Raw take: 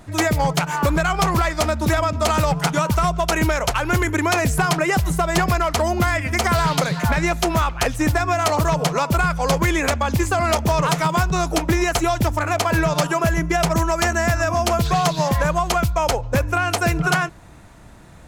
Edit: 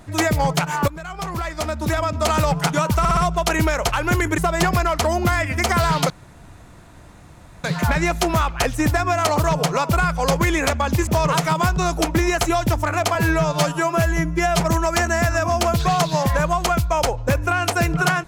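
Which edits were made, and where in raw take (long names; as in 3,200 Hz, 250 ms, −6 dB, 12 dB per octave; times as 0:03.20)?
0:00.88–0:02.36: fade in, from −18.5 dB
0:02.99: stutter 0.06 s, 4 plays
0:04.20–0:05.13: remove
0:06.85: splice in room tone 1.54 s
0:10.28–0:10.61: remove
0:12.69–0:13.66: time-stretch 1.5×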